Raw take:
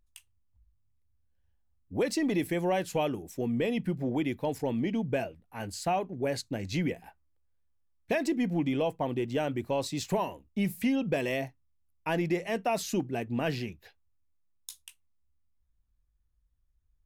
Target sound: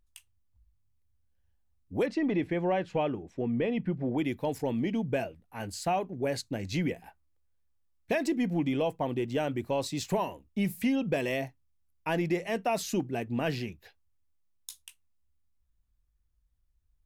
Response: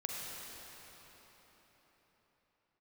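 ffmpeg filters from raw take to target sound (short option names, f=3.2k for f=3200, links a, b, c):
-filter_complex "[0:a]asplit=3[a][b][c];[a]afade=t=out:st=2.05:d=0.02[d];[b]lowpass=2.6k,afade=t=in:st=2.05:d=0.02,afade=t=out:st=4.17:d=0.02[e];[c]afade=t=in:st=4.17:d=0.02[f];[d][e][f]amix=inputs=3:normalize=0"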